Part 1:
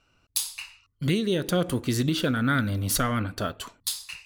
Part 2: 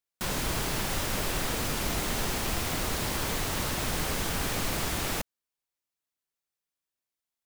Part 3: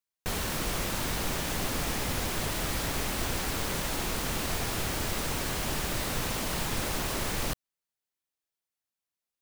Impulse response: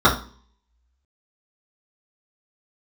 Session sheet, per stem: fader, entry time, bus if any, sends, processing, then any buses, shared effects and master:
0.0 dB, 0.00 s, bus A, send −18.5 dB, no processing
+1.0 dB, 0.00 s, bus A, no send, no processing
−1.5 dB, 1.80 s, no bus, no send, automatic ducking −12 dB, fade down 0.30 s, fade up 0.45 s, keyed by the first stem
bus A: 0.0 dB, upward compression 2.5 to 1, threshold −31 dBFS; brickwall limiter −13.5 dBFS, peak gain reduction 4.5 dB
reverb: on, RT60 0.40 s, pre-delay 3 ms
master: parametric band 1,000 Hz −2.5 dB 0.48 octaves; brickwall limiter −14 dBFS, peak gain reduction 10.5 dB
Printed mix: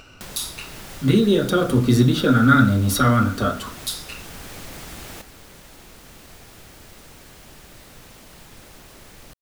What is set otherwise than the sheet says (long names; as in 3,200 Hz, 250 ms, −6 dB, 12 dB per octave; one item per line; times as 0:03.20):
stem 2 +1.0 dB → −10.0 dB
stem 3 −1.5 dB → −13.5 dB
master: missing brickwall limiter −14 dBFS, peak gain reduction 10.5 dB